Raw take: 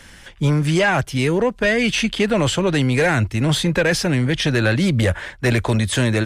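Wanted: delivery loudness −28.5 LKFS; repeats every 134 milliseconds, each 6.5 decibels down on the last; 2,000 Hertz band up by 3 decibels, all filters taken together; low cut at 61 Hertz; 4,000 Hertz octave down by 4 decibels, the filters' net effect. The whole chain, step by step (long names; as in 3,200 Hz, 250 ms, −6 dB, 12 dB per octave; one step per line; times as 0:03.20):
high-pass filter 61 Hz
parametric band 2,000 Hz +5.5 dB
parametric band 4,000 Hz −8 dB
repeating echo 134 ms, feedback 47%, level −6.5 dB
level −11.5 dB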